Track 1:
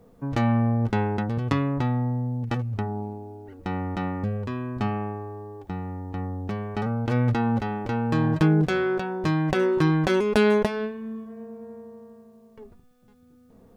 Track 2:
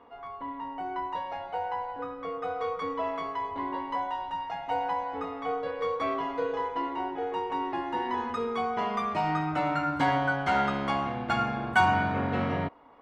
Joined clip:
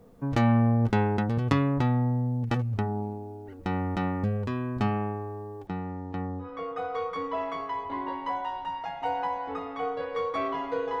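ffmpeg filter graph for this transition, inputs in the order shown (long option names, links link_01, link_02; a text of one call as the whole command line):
ffmpeg -i cue0.wav -i cue1.wav -filter_complex "[0:a]asettb=1/sr,asplit=3[link_01][link_02][link_03];[link_01]atrim=end=5.674[link_04];[link_02]atrim=start=5.67:end=6.5,asetpts=PTS-STARTPTS,afade=type=in:duration=0.004:curve=qsin,afade=type=out:start_time=0.826:duration=0.004:curve=qsin,highpass=110,lowpass=5900[link_05];[link_03]atrim=start=6.496[link_06];[link_04][link_05]acrossfade=duration=0.004:curve1=hsin:curve2=qsin[link_07];[link_07][link_06]acrossfade=duration=0.004:curve1=qsin:curve2=hsin,apad=whole_dur=11,atrim=end=11,atrim=end=6.5,asetpts=PTS-STARTPTS[link_08];[1:a]atrim=start=2.04:end=6.66,asetpts=PTS-STARTPTS[link_09];[link_08][link_09]acrossfade=duration=0.12:curve1=tri:curve2=tri" out.wav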